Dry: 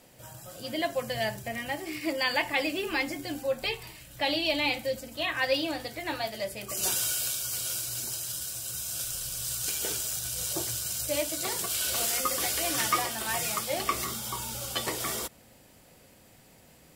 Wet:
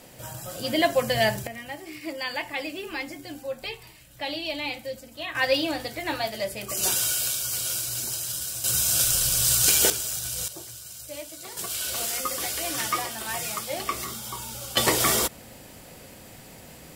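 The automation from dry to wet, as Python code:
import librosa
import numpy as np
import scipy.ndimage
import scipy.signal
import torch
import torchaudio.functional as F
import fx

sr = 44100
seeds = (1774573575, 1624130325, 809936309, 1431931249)

y = fx.gain(x, sr, db=fx.steps((0.0, 8.0), (1.47, -3.5), (5.35, 4.0), (8.64, 12.0), (9.9, 2.5), (10.48, -8.5), (11.57, -0.5), (14.77, 10.5)))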